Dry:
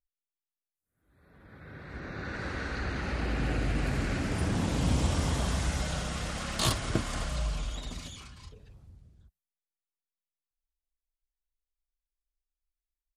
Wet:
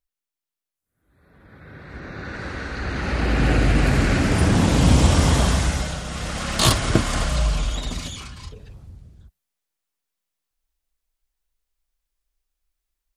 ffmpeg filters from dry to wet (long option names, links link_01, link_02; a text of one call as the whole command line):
ffmpeg -i in.wav -af "volume=20.5dB,afade=type=in:start_time=2.75:duration=0.75:silence=0.421697,afade=type=out:start_time=5.4:duration=0.61:silence=0.334965,afade=type=in:start_time=6.01:duration=0.72:silence=0.375837" out.wav